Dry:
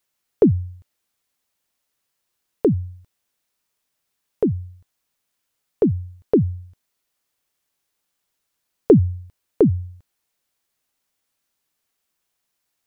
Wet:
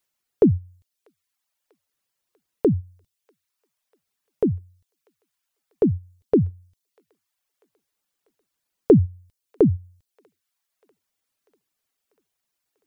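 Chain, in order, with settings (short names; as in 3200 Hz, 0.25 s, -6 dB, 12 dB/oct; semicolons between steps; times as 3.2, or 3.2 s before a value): reverb removal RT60 0.94 s; thin delay 0.643 s, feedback 65%, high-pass 1600 Hz, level -21 dB; gain -1.5 dB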